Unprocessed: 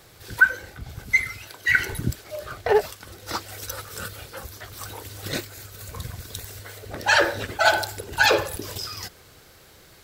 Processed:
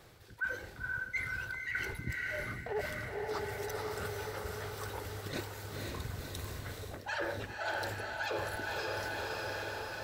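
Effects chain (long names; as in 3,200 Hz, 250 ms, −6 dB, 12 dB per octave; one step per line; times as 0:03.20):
high-shelf EQ 3,700 Hz −8 dB
feedback delay with all-pass diffusion 525 ms, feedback 56%, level −5 dB
reversed playback
downward compressor 6 to 1, threshold −30 dBFS, peak gain reduction 18 dB
reversed playback
level −4.5 dB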